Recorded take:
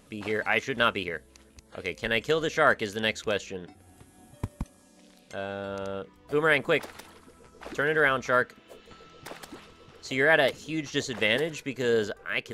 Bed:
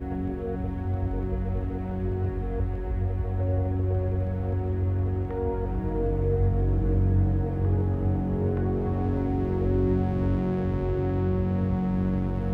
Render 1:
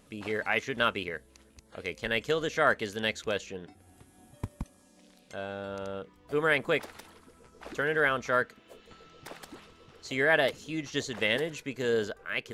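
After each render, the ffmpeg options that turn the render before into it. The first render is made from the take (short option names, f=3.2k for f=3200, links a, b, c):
-af "volume=-3dB"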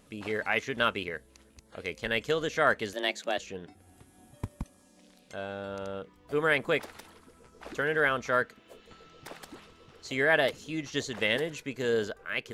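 -filter_complex "[0:a]asettb=1/sr,asplit=3[a][b][c];[a]atrim=end=2.934[d];[b]atrim=start=2.93:end=3.38,asetpts=PTS-STARTPTS,afade=t=in:d=0.004:c=qsin,afade=t=out:st=0.446:d=0.004:c=qsin,afreqshift=130[e];[c]atrim=start=3.376[f];[d][e]acrossfade=d=0.004:c1=hsin:c2=qsin[g];[g][f]acrossfade=d=0.004:c1=qsin:c2=hsin"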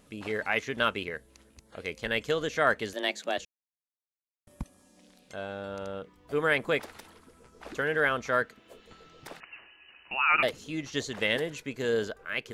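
-filter_complex "[0:a]asettb=1/sr,asplit=3[a][b][c];[a]atrim=end=9.404[d];[b]atrim=start=9.4:end=10.43,asetpts=PTS-STARTPTS,afade=t=in:d=0.004:c=qsin,afade=t=out:st=1.026:d=0.004:c=qsin,lowpass=f=2.6k:t=q:w=0.5098,lowpass=f=2.6k:t=q:w=0.6013,lowpass=f=2.6k:t=q:w=0.9,lowpass=f=2.6k:t=q:w=2.563,afreqshift=-3000[e];[c]atrim=start=10.426[f];[d][e]acrossfade=d=0.004:c1=hsin:c2=qsin[g];[g][f]acrossfade=d=0.004:c1=qsin:c2=hsin,asplit=3[h][i][j];[h]atrim=end=3.45,asetpts=PTS-STARTPTS,afade=t=out:st=3.446:d=0.004:c=hsin[k];[i]atrim=start=3.45:end=4.47,asetpts=PTS-STARTPTS,volume=0[l];[j]atrim=start=4.47,asetpts=PTS-STARTPTS,afade=t=in:d=0.004:c=hsin[m];[k][l][m]concat=n=3:v=0:a=1"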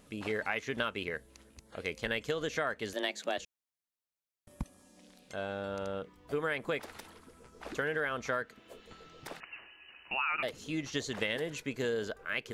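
-af "acompressor=threshold=-29dB:ratio=12"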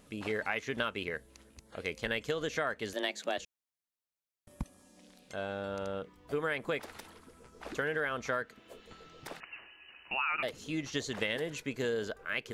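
-af anull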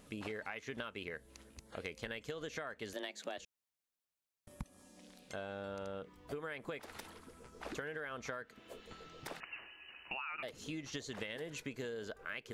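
-af "acompressor=threshold=-40dB:ratio=6"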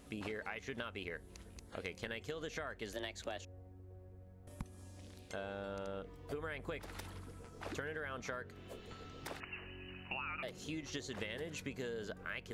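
-filter_complex "[1:a]volume=-29.5dB[a];[0:a][a]amix=inputs=2:normalize=0"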